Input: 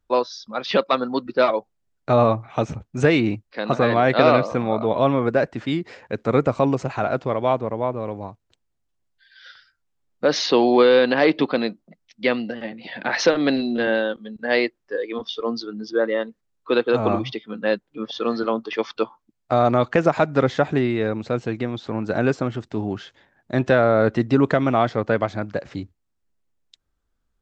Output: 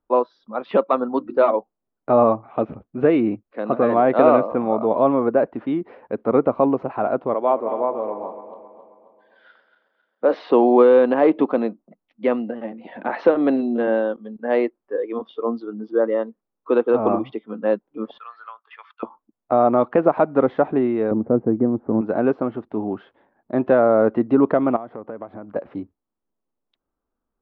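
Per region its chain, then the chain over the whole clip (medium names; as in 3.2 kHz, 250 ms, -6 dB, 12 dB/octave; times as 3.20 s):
1.09–1.56 s: treble shelf 5.3 kHz +9 dB + hum notches 50/100/150/200/250/300/350 Hz
2.53–3.89 s: low-pass 5 kHz 24 dB/octave + peaking EQ 890 Hz -6 dB 0.43 oct
7.34–10.50 s: backward echo that repeats 134 ms, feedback 68%, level -10.5 dB + high-pass 300 Hz
18.18–19.03 s: gate -38 dBFS, range -6 dB + high-pass 1.4 kHz 24 dB/octave + treble shelf 4.2 kHz -10 dB
21.11–22.01 s: steep low-pass 2 kHz + tilt shelf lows +10 dB, about 690 Hz
24.76–25.56 s: low-pass 2 kHz 6 dB/octave + compression, threshold -30 dBFS
whole clip: low-pass 3 kHz 24 dB/octave; high-order bell 500 Hz +12.5 dB 3 oct; trim -10.5 dB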